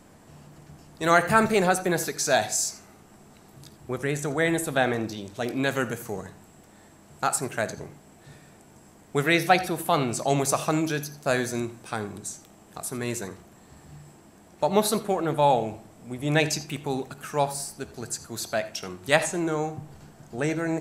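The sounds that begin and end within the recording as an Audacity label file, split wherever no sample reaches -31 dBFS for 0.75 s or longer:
1.010000	2.710000	sound
3.640000	6.270000	sound
7.230000	7.860000	sound
9.150000	13.320000	sound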